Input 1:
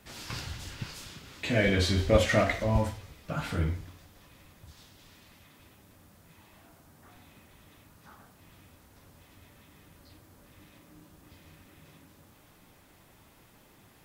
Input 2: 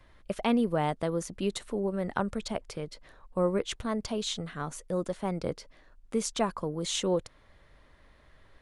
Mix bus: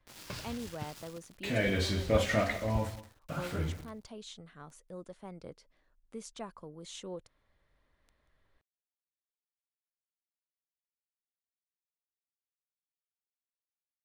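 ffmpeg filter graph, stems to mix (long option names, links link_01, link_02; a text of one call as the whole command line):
ffmpeg -i stem1.wav -i stem2.wav -filter_complex "[0:a]highpass=frequency=44:poles=1,aeval=exprs='val(0)*gte(abs(val(0)),0.00891)':channel_layout=same,volume=-4.5dB,asplit=2[link_01][link_02];[link_02]volume=-17.5dB[link_03];[1:a]volume=-14.5dB[link_04];[link_03]aecho=0:1:185:1[link_05];[link_01][link_04][link_05]amix=inputs=3:normalize=0" out.wav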